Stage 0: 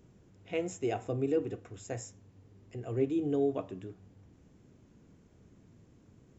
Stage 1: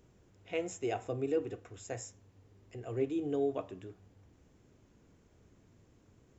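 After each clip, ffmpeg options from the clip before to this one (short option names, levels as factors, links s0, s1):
-af "equalizer=f=180:w=0.79:g=-7"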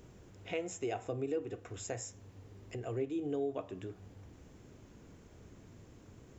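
-af "acompressor=threshold=0.00316:ratio=2,volume=2.51"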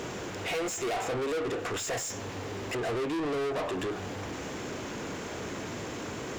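-filter_complex "[0:a]asplit=2[s0][s1];[s1]highpass=f=720:p=1,volume=79.4,asoftclip=type=tanh:threshold=0.075[s2];[s0][s2]amix=inputs=2:normalize=0,lowpass=f=4700:p=1,volume=0.501,volume=0.794"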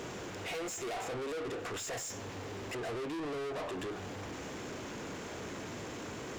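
-af "asoftclip=type=tanh:threshold=0.0282,volume=0.631"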